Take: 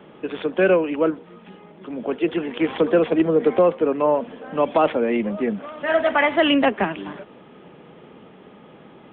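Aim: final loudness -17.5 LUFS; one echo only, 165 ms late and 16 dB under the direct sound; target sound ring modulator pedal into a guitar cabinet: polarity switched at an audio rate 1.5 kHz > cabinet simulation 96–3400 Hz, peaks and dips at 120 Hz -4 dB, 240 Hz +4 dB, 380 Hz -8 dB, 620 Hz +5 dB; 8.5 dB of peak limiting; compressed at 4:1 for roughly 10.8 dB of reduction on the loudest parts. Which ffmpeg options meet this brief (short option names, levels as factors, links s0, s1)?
-af "acompressor=threshold=0.0501:ratio=4,alimiter=limit=0.075:level=0:latency=1,aecho=1:1:165:0.158,aeval=exprs='val(0)*sgn(sin(2*PI*1500*n/s))':c=same,highpass=96,equalizer=f=120:t=q:w=4:g=-4,equalizer=f=240:t=q:w=4:g=4,equalizer=f=380:t=q:w=4:g=-8,equalizer=f=620:t=q:w=4:g=5,lowpass=f=3400:w=0.5412,lowpass=f=3400:w=1.3066,volume=5.01"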